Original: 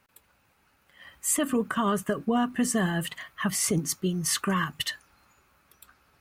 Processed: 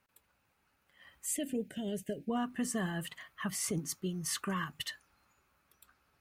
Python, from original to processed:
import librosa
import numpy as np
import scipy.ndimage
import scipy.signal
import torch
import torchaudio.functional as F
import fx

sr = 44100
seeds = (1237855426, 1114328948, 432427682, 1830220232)

y = fx.cheby1_bandstop(x, sr, low_hz=590.0, high_hz=2200.0, order=2, at=(1.26, 2.3))
y = y * 10.0 ** (-9.0 / 20.0)